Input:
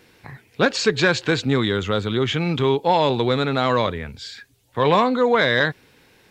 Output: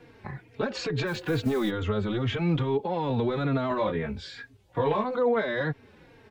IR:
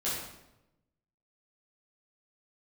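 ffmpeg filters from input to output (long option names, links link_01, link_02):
-filter_complex "[0:a]lowpass=frequency=1100:poles=1,acrossover=split=300|670[link_01][link_02][link_03];[link_01]asoftclip=type=hard:threshold=-24dB[link_04];[link_04][link_02][link_03]amix=inputs=3:normalize=0,asplit=3[link_05][link_06][link_07];[link_05]afade=type=out:start_time=1.06:duration=0.02[link_08];[link_06]acrusher=bits=6:mode=log:mix=0:aa=0.000001,afade=type=in:start_time=1.06:duration=0.02,afade=type=out:start_time=1.69:duration=0.02[link_09];[link_07]afade=type=in:start_time=1.69:duration=0.02[link_10];[link_08][link_09][link_10]amix=inputs=3:normalize=0,asplit=2[link_11][link_12];[link_12]acompressor=threshold=-32dB:ratio=6,volume=-2.5dB[link_13];[link_11][link_13]amix=inputs=2:normalize=0,alimiter=limit=-18dB:level=0:latency=1:release=39,asettb=1/sr,asplit=3[link_14][link_15][link_16];[link_14]atrim=end=3.694[link_17];[link_15]atrim=start=3.69:end=5.04,asetpts=PTS-STARTPTS,afade=type=in:duration=0.004:curve=qsin,afade=type=out:start_time=1.346:duration=0.004:curve=qsin,asplit=2[link_18][link_19];[link_19]adelay=19,volume=-3dB[link_20];[link_18][link_20]amix=inputs=2:normalize=0,atrim=end_sample=59535[link_21];[link_16]atrim=start=5.036[link_22];[link_17][link_21]acrossfade=duration=0.004:curve1=hsin:curve2=qsin[link_23];[link_23][link_22]acrossfade=duration=0.004:curve1=qsin:curve2=hsin,asplit=2[link_24][link_25];[link_25]adelay=3.7,afreqshift=-2.3[link_26];[link_24][link_26]amix=inputs=2:normalize=1,volume=1.5dB"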